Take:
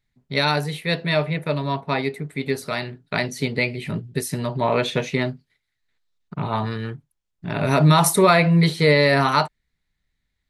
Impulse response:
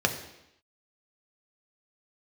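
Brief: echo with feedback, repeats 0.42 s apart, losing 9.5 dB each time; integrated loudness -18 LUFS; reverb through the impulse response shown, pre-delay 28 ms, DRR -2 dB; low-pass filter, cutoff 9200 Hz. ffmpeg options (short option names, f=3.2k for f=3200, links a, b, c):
-filter_complex "[0:a]lowpass=9.2k,aecho=1:1:420|840|1260|1680:0.335|0.111|0.0365|0.012,asplit=2[a][b];[1:a]atrim=start_sample=2205,adelay=28[c];[b][c]afir=irnorm=-1:irlink=0,volume=-10dB[d];[a][d]amix=inputs=2:normalize=0,volume=-2.5dB"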